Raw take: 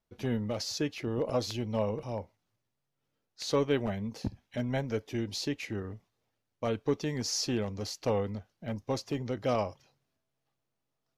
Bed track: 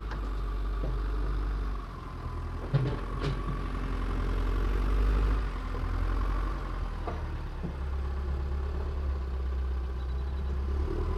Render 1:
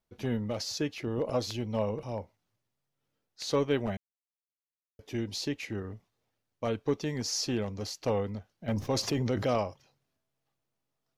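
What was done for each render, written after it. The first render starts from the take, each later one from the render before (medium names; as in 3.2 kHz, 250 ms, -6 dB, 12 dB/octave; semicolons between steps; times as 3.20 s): 3.97–4.99 s: mute; 8.68–9.58 s: level flattener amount 70%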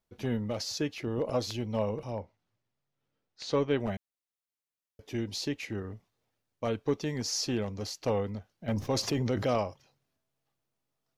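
2.11–3.80 s: distance through air 84 m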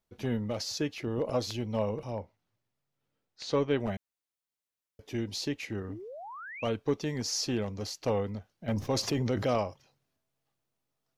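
5.88–6.69 s: painted sound rise 250–3200 Hz -43 dBFS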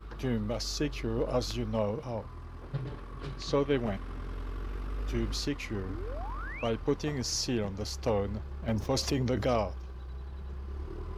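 add bed track -8.5 dB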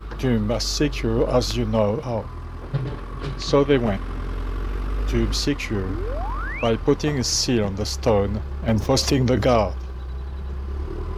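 trim +10.5 dB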